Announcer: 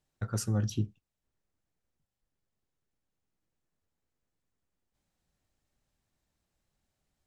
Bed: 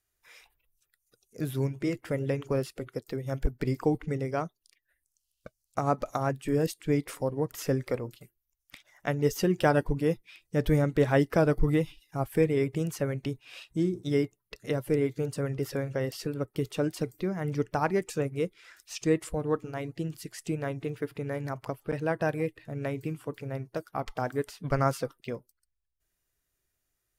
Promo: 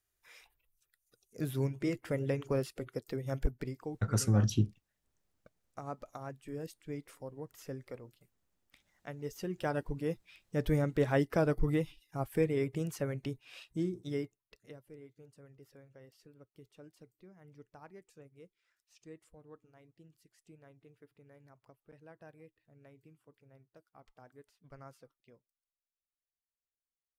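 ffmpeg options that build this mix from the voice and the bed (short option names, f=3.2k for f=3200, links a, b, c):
-filter_complex "[0:a]adelay=3800,volume=2.5dB[a];[1:a]volume=6dB,afade=t=out:st=3.46:d=0.29:silence=0.266073,afade=t=in:st=9.26:d=1.38:silence=0.334965,afade=t=out:st=13.66:d=1.16:silence=0.0944061[b];[a][b]amix=inputs=2:normalize=0"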